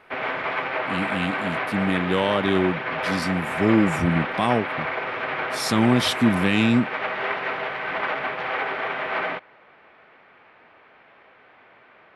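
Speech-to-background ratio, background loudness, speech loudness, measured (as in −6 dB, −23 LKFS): 3.5 dB, −27.0 LKFS, −23.5 LKFS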